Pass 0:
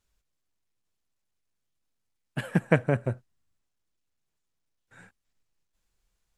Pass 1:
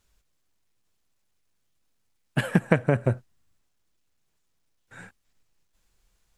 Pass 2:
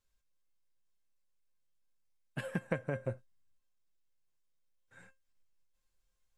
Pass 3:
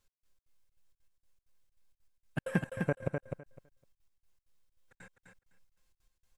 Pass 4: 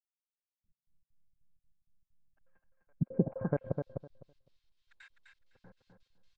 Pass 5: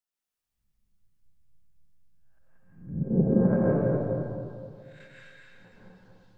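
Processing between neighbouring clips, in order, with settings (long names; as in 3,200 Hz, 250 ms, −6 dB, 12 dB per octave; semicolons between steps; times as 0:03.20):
downward compressor 6 to 1, threshold −23 dBFS, peak gain reduction 9 dB; level +7.5 dB
tuned comb filter 530 Hz, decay 0.19 s, harmonics all, mix 80%; level −2.5 dB
gate pattern "x..xx.xxx.xx." 195 BPM −60 dB; on a send: repeating echo 254 ms, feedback 16%, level −5 dB; on the sum: level +6 dB
multiband delay without the direct sound highs, lows 640 ms, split 1,100 Hz; low-pass filter sweep 180 Hz → 4,100 Hz, 0:03.00–0:03.72
peak hold with a rise ahead of every peak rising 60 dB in 0.53 s; dense smooth reverb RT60 2.2 s, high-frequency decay 0.8×, pre-delay 120 ms, DRR −5.5 dB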